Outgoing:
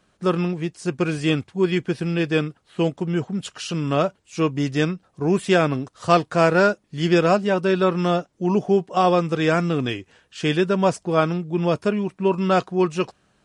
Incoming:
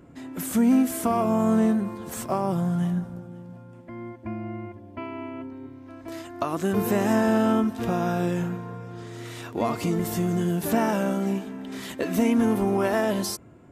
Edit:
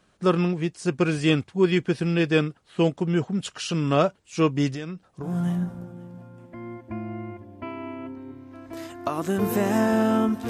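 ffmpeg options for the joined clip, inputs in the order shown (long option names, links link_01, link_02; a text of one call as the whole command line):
ffmpeg -i cue0.wav -i cue1.wav -filter_complex "[0:a]asettb=1/sr,asplit=3[link_01][link_02][link_03];[link_01]atrim=end=4.704[link_04];[link_02]atrim=start=4.7:end=5.37,asetpts=PTS-STARTPTS,afade=type=in:duration=0.004:curve=qsin,afade=type=out:start_time=0.666:duration=0.004:curve=qsin,acompressor=threshold=-29dB:ratio=10:attack=3.2:release=140:knee=1:detection=peak[link_05];[link_03]atrim=start=5.366[link_06];[link_04][link_05]acrossfade=duration=0.004:curve1=hsin:curve2=qsin[link_07];[link_07][link_06]acrossfade=duration=0.004:curve1=qsin:curve2=hsin,apad=whole_dur=10.49,atrim=end=10.49,atrim=end=5.37,asetpts=PTS-STARTPTS[link_08];[1:a]atrim=start=2.56:end=7.84,asetpts=PTS-STARTPTS[link_09];[link_08][link_09]acrossfade=duration=0.16:curve1=tri:curve2=tri" out.wav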